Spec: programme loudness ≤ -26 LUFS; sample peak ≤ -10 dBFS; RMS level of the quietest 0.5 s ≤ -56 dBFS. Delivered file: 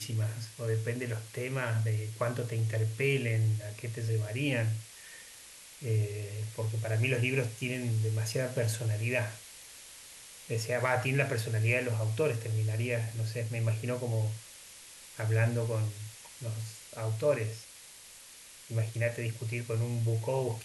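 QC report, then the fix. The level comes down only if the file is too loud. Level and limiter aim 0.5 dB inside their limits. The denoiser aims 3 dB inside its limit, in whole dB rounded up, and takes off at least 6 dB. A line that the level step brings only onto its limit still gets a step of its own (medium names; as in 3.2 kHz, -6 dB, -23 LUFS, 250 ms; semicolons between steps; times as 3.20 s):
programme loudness -32.5 LUFS: pass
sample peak -14.5 dBFS: pass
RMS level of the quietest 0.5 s -52 dBFS: fail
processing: noise reduction 7 dB, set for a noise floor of -52 dBFS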